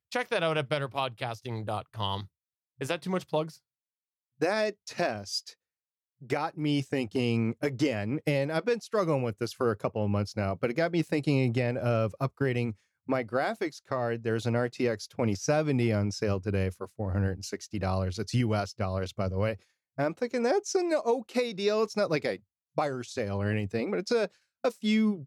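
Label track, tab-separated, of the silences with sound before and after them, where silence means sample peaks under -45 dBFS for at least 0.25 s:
2.260000	2.800000	silence
3.560000	4.410000	silence
5.510000	6.220000	silence
12.730000	13.090000	silence
19.560000	19.980000	silence
22.370000	22.770000	silence
24.270000	24.640000	silence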